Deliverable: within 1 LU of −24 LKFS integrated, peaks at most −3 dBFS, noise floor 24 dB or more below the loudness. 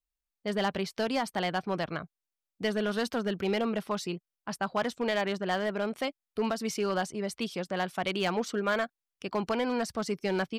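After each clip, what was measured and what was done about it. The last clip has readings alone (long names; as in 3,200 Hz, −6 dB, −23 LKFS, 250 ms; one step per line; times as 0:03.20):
share of clipped samples 1.0%; peaks flattened at −21.5 dBFS; integrated loudness −31.5 LKFS; sample peak −21.5 dBFS; target loudness −24.0 LKFS
→ clipped peaks rebuilt −21.5 dBFS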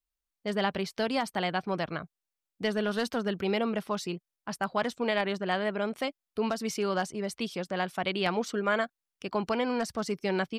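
share of clipped samples 0.0%; integrated loudness −31.0 LKFS; sample peak −12.5 dBFS; target loudness −24.0 LKFS
→ level +7 dB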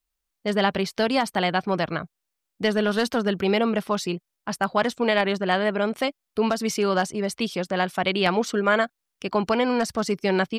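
integrated loudness −24.0 LKFS; sample peak −5.5 dBFS; background noise floor −82 dBFS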